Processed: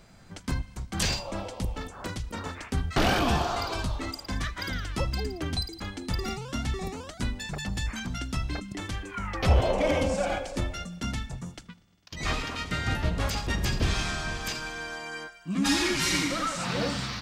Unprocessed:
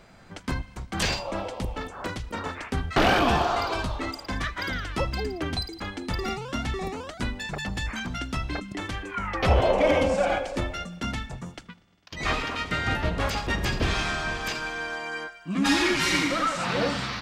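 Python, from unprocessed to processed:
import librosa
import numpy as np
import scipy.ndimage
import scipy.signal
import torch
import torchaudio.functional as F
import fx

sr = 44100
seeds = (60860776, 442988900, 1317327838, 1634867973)

y = fx.bass_treble(x, sr, bass_db=6, treble_db=8)
y = y * librosa.db_to_amplitude(-5.0)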